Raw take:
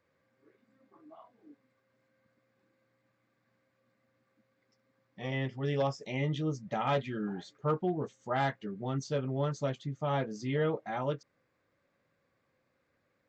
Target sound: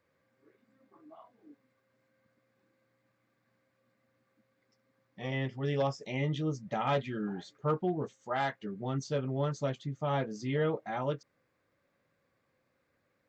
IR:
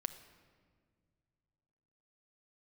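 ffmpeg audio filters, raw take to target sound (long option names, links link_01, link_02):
-filter_complex "[0:a]asettb=1/sr,asplit=3[link_01][link_02][link_03];[link_01]atrim=end=8.144[link_04];[link_02]atrim=start=8.14:end=8.61,asetpts=PTS-STARTPTS,afade=type=in:duration=0.004:curve=qsin,afade=type=out:start_time=0.466:duration=0.004:curve=qsin,lowshelf=frequency=260:gain=-9.5[link_05];[link_03]atrim=start=8.606[link_06];[link_04][link_05]acrossfade=duration=0.004:curve1=hsin:curve2=qsin[link_07];[link_07][link_06]acrossfade=duration=0.004:curve1=qsin:curve2=hsin"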